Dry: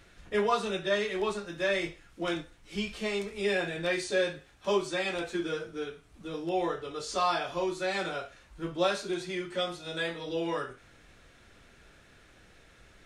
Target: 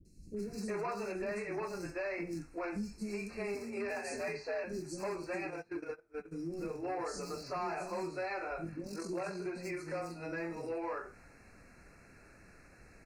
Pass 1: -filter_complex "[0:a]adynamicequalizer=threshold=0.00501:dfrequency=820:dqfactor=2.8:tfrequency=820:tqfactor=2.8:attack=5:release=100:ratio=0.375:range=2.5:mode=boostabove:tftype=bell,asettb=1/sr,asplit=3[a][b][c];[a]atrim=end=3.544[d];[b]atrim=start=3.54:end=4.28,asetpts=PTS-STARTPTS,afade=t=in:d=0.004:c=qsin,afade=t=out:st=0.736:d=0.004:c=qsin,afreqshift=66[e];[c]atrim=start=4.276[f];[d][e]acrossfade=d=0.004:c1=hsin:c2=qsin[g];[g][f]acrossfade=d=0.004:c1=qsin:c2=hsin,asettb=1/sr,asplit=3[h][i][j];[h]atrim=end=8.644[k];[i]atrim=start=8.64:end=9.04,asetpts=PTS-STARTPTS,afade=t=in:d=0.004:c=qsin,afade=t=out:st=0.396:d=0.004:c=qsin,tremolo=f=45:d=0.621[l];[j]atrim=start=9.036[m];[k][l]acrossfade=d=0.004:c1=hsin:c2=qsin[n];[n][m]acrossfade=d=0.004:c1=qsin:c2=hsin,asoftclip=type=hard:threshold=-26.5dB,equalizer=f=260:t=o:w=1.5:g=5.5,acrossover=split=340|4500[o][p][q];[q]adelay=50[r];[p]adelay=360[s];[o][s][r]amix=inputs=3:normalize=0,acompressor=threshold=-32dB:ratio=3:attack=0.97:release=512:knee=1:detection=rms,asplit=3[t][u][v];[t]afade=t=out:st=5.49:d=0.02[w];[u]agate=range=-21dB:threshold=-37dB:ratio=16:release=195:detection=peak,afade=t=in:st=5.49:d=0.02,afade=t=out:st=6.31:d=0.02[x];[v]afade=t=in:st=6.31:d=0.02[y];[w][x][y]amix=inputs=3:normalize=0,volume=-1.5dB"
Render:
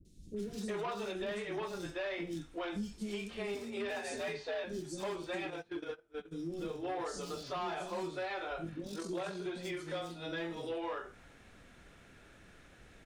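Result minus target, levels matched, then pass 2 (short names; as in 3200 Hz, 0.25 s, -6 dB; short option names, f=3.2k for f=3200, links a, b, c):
4000 Hz band +7.5 dB
-filter_complex "[0:a]adynamicequalizer=threshold=0.00501:dfrequency=820:dqfactor=2.8:tfrequency=820:tqfactor=2.8:attack=5:release=100:ratio=0.375:range=2.5:mode=boostabove:tftype=bell,asettb=1/sr,asplit=3[a][b][c];[a]atrim=end=3.544[d];[b]atrim=start=3.54:end=4.28,asetpts=PTS-STARTPTS,afade=t=in:d=0.004:c=qsin,afade=t=out:st=0.736:d=0.004:c=qsin,afreqshift=66[e];[c]atrim=start=4.276[f];[d][e]acrossfade=d=0.004:c1=hsin:c2=qsin[g];[g][f]acrossfade=d=0.004:c1=qsin:c2=hsin,asettb=1/sr,asplit=3[h][i][j];[h]atrim=end=8.644[k];[i]atrim=start=8.64:end=9.04,asetpts=PTS-STARTPTS,afade=t=in:d=0.004:c=qsin,afade=t=out:st=0.396:d=0.004:c=qsin,tremolo=f=45:d=0.621[l];[j]atrim=start=9.036[m];[k][l]acrossfade=d=0.004:c1=hsin:c2=qsin[n];[n][m]acrossfade=d=0.004:c1=qsin:c2=hsin,asoftclip=type=hard:threshold=-26.5dB,asuperstop=centerf=3300:order=20:qfactor=2.6,equalizer=f=260:t=o:w=1.5:g=5.5,acrossover=split=340|4500[o][p][q];[q]adelay=50[r];[p]adelay=360[s];[o][s][r]amix=inputs=3:normalize=0,acompressor=threshold=-32dB:ratio=3:attack=0.97:release=512:knee=1:detection=rms,asplit=3[t][u][v];[t]afade=t=out:st=5.49:d=0.02[w];[u]agate=range=-21dB:threshold=-37dB:ratio=16:release=195:detection=peak,afade=t=in:st=5.49:d=0.02,afade=t=out:st=6.31:d=0.02[x];[v]afade=t=in:st=6.31:d=0.02[y];[w][x][y]amix=inputs=3:normalize=0,volume=-1.5dB"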